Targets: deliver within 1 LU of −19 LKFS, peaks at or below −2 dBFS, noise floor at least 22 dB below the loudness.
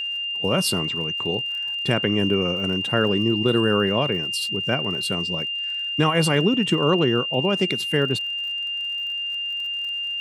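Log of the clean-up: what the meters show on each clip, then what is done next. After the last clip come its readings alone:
crackle rate 57 per second; interfering tone 2,800 Hz; level of the tone −25 dBFS; integrated loudness −22.0 LKFS; sample peak −5.0 dBFS; target loudness −19.0 LKFS
→ click removal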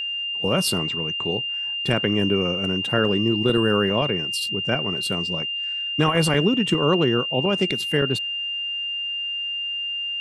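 crackle rate 0.098 per second; interfering tone 2,800 Hz; level of the tone −25 dBFS
→ notch filter 2,800 Hz, Q 30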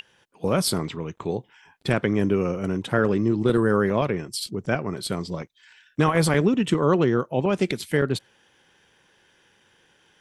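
interfering tone none found; integrated loudness −24.0 LKFS; sample peak −6.0 dBFS; target loudness −19.0 LKFS
→ level +5 dB
brickwall limiter −2 dBFS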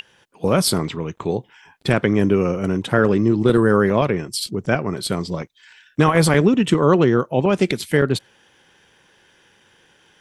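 integrated loudness −19.0 LKFS; sample peak −2.0 dBFS; background noise floor −57 dBFS

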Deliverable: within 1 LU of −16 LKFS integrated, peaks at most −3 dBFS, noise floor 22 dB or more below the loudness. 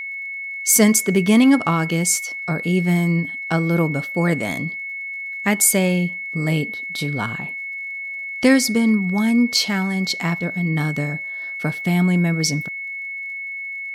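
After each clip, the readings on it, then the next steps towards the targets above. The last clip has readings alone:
crackle rate 35 per second; interfering tone 2,200 Hz; level of the tone −27 dBFS; integrated loudness −20.0 LKFS; sample peak −2.5 dBFS; target loudness −16.0 LKFS
→ click removal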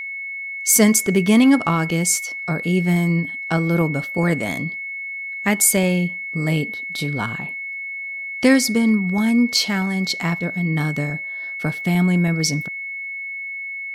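crackle rate 0.50 per second; interfering tone 2,200 Hz; level of the tone −27 dBFS
→ notch filter 2,200 Hz, Q 30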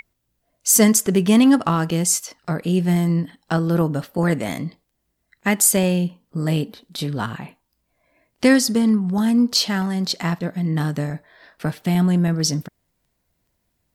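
interfering tone none found; integrated loudness −19.5 LKFS; sample peak −3.0 dBFS; target loudness −16.0 LKFS
→ level +3.5 dB
brickwall limiter −3 dBFS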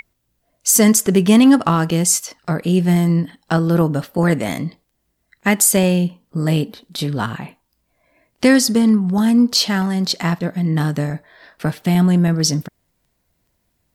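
integrated loudness −16.5 LKFS; sample peak −3.0 dBFS; background noise floor −70 dBFS

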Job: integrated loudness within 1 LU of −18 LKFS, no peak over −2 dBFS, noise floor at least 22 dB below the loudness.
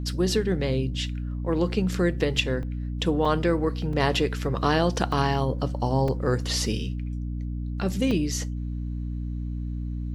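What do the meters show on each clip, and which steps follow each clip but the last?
number of dropouts 6; longest dropout 3.4 ms; mains hum 60 Hz; hum harmonics up to 300 Hz; level of the hum −28 dBFS; integrated loudness −26.5 LKFS; sample peak −8.0 dBFS; target loudness −18.0 LKFS
→ repair the gap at 0:02.63/0:03.25/0:03.93/0:05.12/0:06.08/0:08.11, 3.4 ms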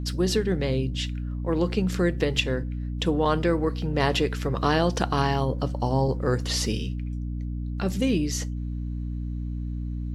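number of dropouts 0; mains hum 60 Hz; hum harmonics up to 300 Hz; level of the hum −28 dBFS
→ mains-hum notches 60/120/180/240/300 Hz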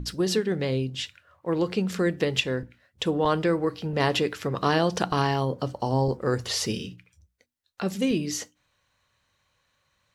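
mains hum none found; integrated loudness −26.5 LKFS; sample peak −8.5 dBFS; target loudness −18.0 LKFS
→ level +8.5 dB
brickwall limiter −2 dBFS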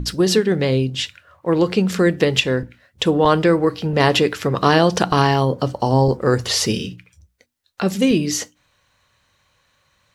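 integrated loudness −18.0 LKFS; sample peak −2.0 dBFS; background noise floor −65 dBFS

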